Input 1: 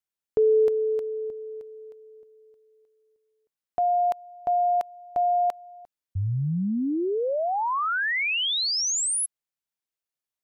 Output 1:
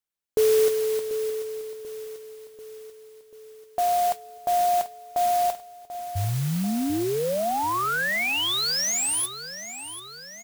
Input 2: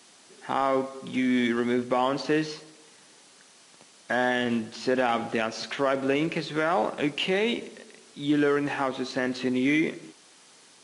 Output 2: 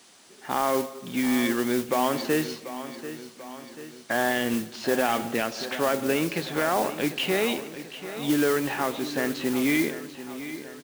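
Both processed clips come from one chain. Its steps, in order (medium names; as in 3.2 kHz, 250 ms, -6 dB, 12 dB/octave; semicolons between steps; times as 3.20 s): modulation noise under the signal 13 dB; on a send: feedback delay 739 ms, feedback 56%, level -13 dB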